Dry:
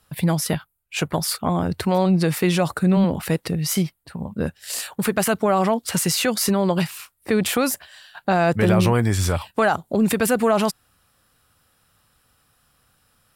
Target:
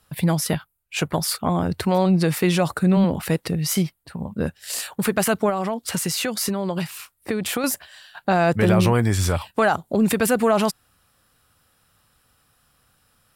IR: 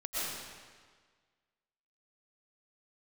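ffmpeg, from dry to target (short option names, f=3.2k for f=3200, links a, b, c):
-filter_complex "[0:a]asettb=1/sr,asplit=3[a][b][c];[a]atrim=end=5.494[d];[b]atrim=start=5.49:end=7.64,asetpts=PTS-STARTPTS,afade=t=in:d=0.004:c=qsin,afade=t=out:st=2.146:d=0.004:c=qsin,acompressor=threshold=-21dB:ratio=6[e];[c]atrim=start=7.636[f];[d][e]acrossfade=d=0.004:c1=hsin:c2=qsin[g];[g][f]acrossfade=d=0.004:c1=qsin:c2=hsin"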